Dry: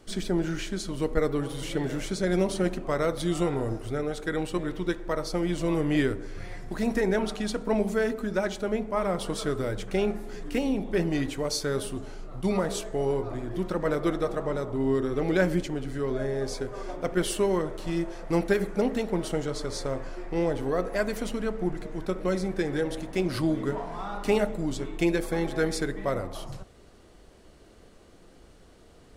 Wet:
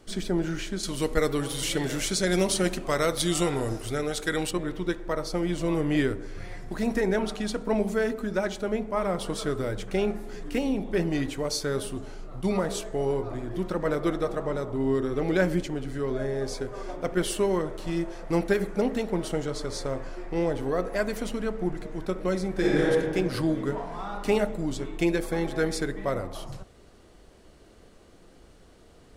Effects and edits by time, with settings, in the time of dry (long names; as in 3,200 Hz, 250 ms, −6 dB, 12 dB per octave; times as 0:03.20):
0:00.83–0:04.51: high-shelf EQ 2,200 Hz +12 dB
0:22.51–0:22.91: thrown reverb, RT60 1.8 s, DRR −5.5 dB